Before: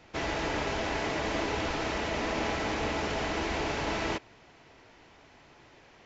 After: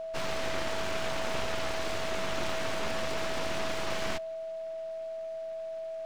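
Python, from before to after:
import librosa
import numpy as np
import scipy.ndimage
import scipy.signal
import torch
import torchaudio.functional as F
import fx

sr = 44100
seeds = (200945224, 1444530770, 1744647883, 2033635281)

y = np.abs(x)
y = y + 10.0 ** (-35.0 / 20.0) * np.sin(2.0 * np.pi * 650.0 * np.arange(len(y)) / sr)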